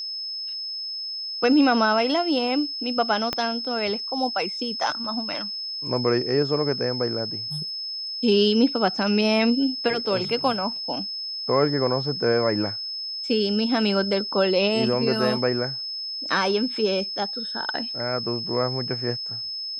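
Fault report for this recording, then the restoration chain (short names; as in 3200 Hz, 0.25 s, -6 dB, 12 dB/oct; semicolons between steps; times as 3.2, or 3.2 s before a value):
tone 5200 Hz -29 dBFS
3.33 pop -10 dBFS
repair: de-click; notch 5200 Hz, Q 30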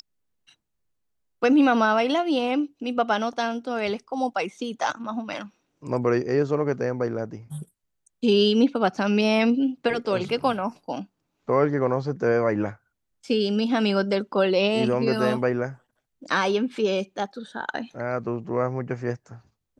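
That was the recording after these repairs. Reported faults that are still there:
3.33 pop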